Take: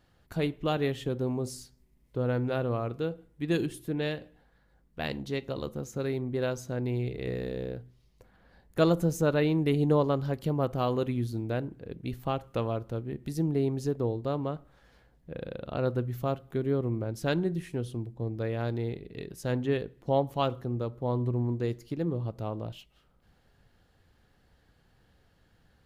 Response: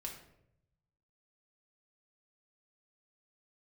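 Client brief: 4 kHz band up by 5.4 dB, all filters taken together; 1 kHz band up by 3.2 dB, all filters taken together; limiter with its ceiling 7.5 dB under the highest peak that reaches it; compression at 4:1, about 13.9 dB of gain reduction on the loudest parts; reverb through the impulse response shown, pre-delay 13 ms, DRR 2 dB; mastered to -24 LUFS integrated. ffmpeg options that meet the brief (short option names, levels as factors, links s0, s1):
-filter_complex "[0:a]equalizer=f=1000:t=o:g=4,equalizer=f=4000:t=o:g=6.5,acompressor=threshold=0.0178:ratio=4,alimiter=level_in=1.88:limit=0.0631:level=0:latency=1,volume=0.531,asplit=2[s0][s1];[1:a]atrim=start_sample=2205,adelay=13[s2];[s1][s2]afir=irnorm=-1:irlink=0,volume=1[s3];[s0][s3]amix=inputs=2:normalize=0,volume=5.31"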